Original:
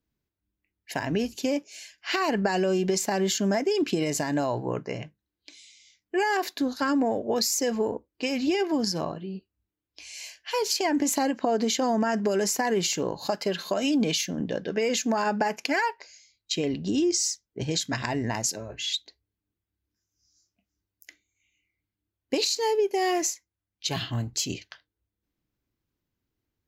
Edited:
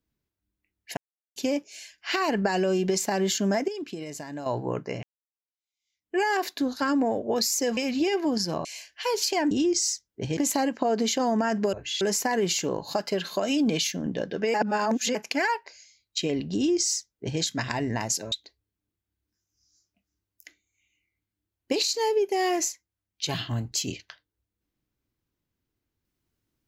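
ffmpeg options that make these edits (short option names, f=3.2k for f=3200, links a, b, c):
-filter_complex "[0:a]asplit=15[a][b][c][d][e][f][g][h][i][j][k][l][m][n][o];[a]atrim=end=0.97,asetpts=PTS-STARTPTS,afade=t=out:st=0.966:d=0.004:c=hsin[p];[b]atrim=start=0.97:end=1.36,asetpts=PTS-STARTPTS,volume=0[q];[c]atrim=start=1.36:end=3.682,asetpts=PTS-STARTPTS,afade=t=in:d=0.004:c=hsin[r];[d]atrim=start=3.678:end=4.462,asetpts=PTS-STARTPTS,volume=-10dB[s];[e]atrim=start=4.458:end=5.03,asetpts=PTS-STARTPTS,afade=t=out:st=0.568:d=0.004:c=hsin[t];[f]atrim=start=5.03:end=7.772,asetpts=PTS-STARTPTS,afade=t=in:d=1.12:c=exp[u];[g]atrim=start=8.238:end=9.122[v];[h]atrim=start=10.128:end=10.992[w];[i]atrim=start=16.888:end=17.752[x];[j]atrim=start=10.988:end=12.352[y];[k]atrim=start=18.658:end=18.942[z];[l]atrim=start=12.348:end=14.882[aa];[m]atrim=start=14.878:end=15.492,asetpts=PTS-STARTPTS,areverse[ab];[n]atrim=start=15.488:end=18.662[ac];[o]atrim=start=18.938[ad];[p][q][r]concat=n=3:v=0:a=1[ae];[ae][s]acrossfade=d=0.004:c1=hsin:c2=hsin[af];[t][u]concat=n=2:v=0:a=1[ag];[af][ag]acrossfade=d=0.004:c1=hsin:c2=hsin[ah];[ah][v]acrossfade=d=0.004:c1=hsin:c2=hsin[ai];[ai][w]acrossfade=d=0.004:c1=hsin:c2=hsin[aj];[aj][x]acrossfade=d=0.004:c1=hsin:c2=hsin[ak];[ak][y]acrossfade=d=0.004:c1=hsin:c2=hsin[al];[al][z]acrossfade=d=0.004:c1=hsin:c2=hsin[am];[am][aa]acrossfade=d=0.004:c1=hsin:c2=hsin[an];[an][ab]acrossfade=d=0.004:c1=hsin:c2=hsin[ao];[ao][ac]acrossfade=d=0.004:c1=hsin:c2=hsin[ap];[ap][ad]acrossfade=d=0.004:c1=hsin:c2=hsin"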